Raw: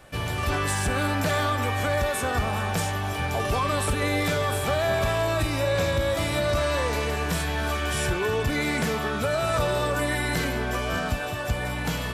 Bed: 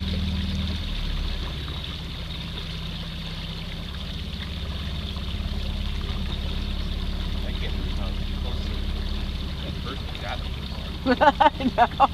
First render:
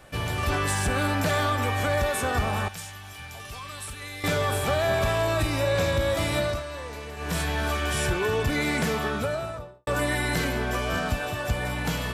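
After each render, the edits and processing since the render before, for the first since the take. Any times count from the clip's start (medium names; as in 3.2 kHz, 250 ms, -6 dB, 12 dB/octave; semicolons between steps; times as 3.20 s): 2.68–4.24 s: amplifier tone stack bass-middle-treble 5-5-5; 6.40–7.39 s: dip -11 dB, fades 0.23 s; 9.03–9.87 s: studio fade out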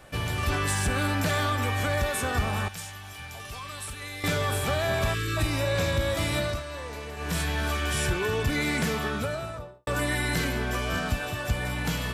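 5.14–5.37 s: spectral selection erased 550–1100 Hz; dynamic bell 660 Hz, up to -4 dB, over -36 dBFS, Q 0.76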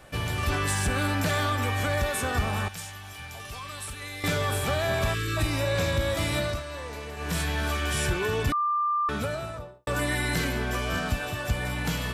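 8.52–9.09 s: bleep 1.19 kHz -22.5 dBFS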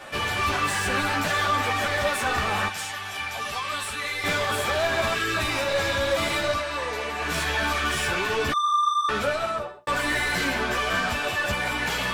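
overdrive pedal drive 23 dB, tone 3.5 kHz, clips at -14 dBFS; three-phase chorus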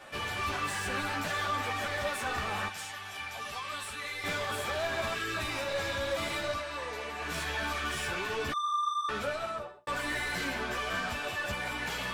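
trim -8.5 dB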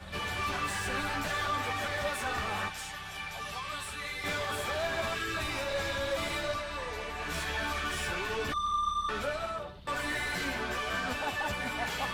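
add bed -20 dB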